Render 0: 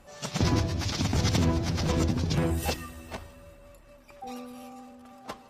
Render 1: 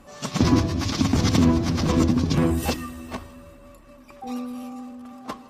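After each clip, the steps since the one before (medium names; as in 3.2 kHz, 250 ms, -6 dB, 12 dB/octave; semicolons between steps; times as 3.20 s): small resonant body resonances 260/1100 Hz, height 9 dB, ringing for 30 ms; trim +3 dB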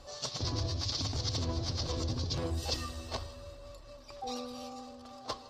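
FFT filter 120 Hz 0 dB, 190 Hz -18 dB, 520 Hz 0 dB, 1.1 kHz -5 dB, 2.4 kHz -7 dB, 4.5 kHz +10 dB, 11 kHz -11 dB; reverse; compression 8:1, threshold -31 dBFS, peak gain reduction 13.5 dB; reverse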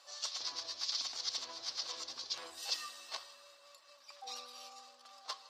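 high-pass 1.2 kHz 12 dB/octave; trim -1 dB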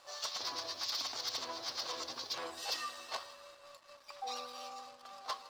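treble shelf 2.4 kHz -11 dB; waveshaping leveller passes 2; trim +2 dB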